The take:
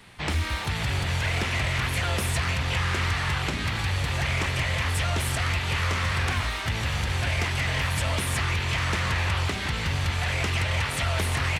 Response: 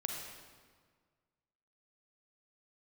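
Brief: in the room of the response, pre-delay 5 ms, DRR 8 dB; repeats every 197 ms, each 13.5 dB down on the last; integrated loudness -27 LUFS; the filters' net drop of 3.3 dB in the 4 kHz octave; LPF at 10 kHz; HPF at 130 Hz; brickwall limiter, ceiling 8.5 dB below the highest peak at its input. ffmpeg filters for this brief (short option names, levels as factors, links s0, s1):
-filter_complex "[0:a]highpass=130,lowpass=10000,equalizer=f=4000:t=o:g=-4.5,alimiter=limit=0.0668:level=0:latency=1,aecho=1:1:197|394:0.211|0.0444,asplit=2[s0][s1];[1:a]atrim=start_sample=2205,adelay=5[s2];[s1][s2]afir=irnorm=-1:irlink=0,volume=0.335[s3];[s0][s3]amix=inputs=2:normalize=0,volume=1.68"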